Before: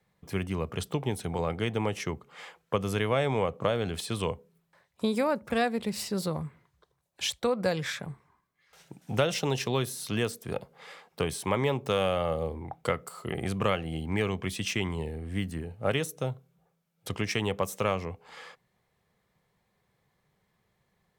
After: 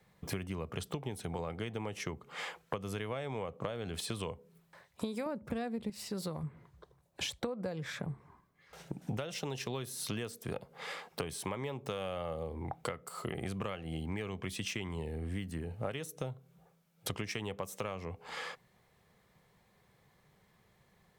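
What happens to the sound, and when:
0:05.26–0:05.90: low-shelf EQ 440 Hz +12 dB
0:06.43–0:09.17: tilt shelving filter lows +5 dB, about 1,100 Hz
whole clip: downward compressor 12 to 1, threshold −40 dBFS; level +5.5 dB

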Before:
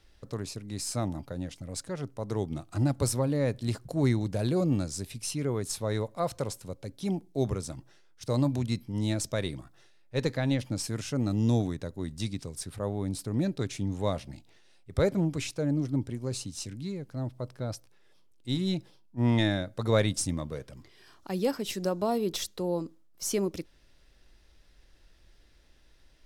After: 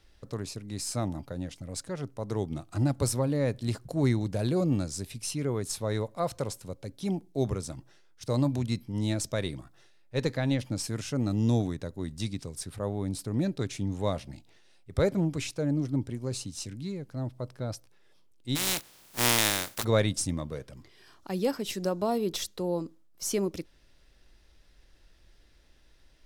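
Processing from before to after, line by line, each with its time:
0:18.55–0:19.83: compressing power law on the bin magnitudes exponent 0.22

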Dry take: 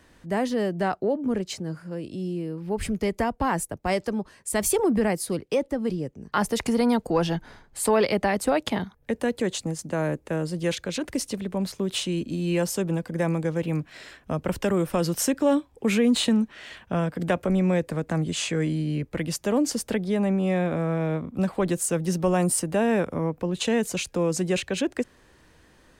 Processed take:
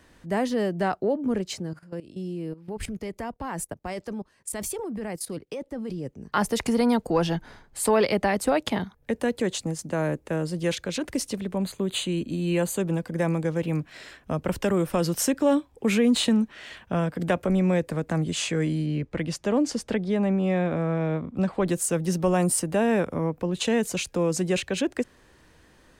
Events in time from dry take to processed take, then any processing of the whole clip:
0:01.66–0:06.06: output level in coarse steps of 16 dB
0:11.56–0:12.80: Butterworth band-reject 5,400 Hz, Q 3.4
0:18.86–0:21.67: high-frequency loss of the air 62 metres

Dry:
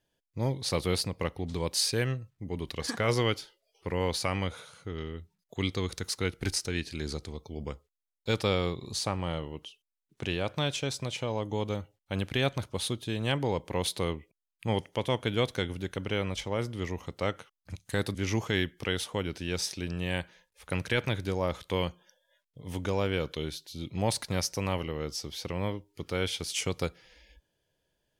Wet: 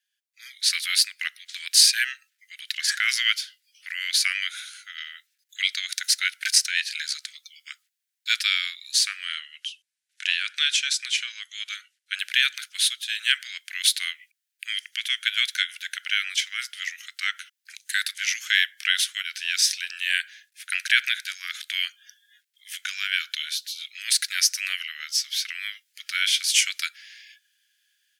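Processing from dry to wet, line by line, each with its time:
0:09.25–0:12.19: low-pass filter 11,000 Hz 24 dB per octave
whole clip: automatic gain control gain up to 12 dB; Butterworth high-pass 1,500 Hz 72 dB per octave; level +1.5 dB

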